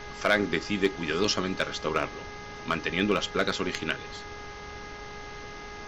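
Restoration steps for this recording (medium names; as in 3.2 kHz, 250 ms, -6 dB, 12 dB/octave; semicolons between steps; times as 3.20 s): clip repair -12.5 dBFS; de-hum 413.5 Hz, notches 5; noise print and reduce 30 dB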